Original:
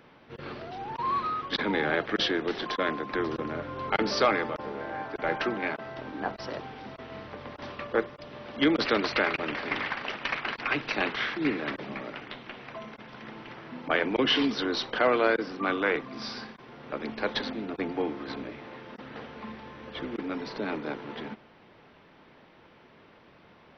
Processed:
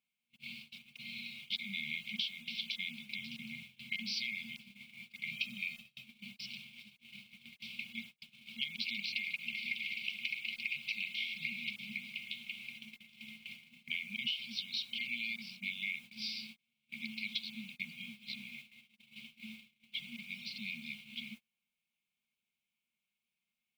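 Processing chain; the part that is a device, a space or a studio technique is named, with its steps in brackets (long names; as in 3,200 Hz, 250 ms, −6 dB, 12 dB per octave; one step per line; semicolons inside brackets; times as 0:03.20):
high-pass filter 100 Hz
brick-wall band-stop 240–2,100 Hz
baby monitor (band-pass filter 460–4,000 Hz; downward compressor 8 to 1, threshold −39 dBFS, peak gain reduction 16 dB; white noise bed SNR 23 dB; noise gate −54 dBFS, range −29 dB)
low-shelf EQ 170 Hz +3.5 dB
0:05.32–0:06.04: comb filter 1.6 ms, depth 77%
level +4.5 dB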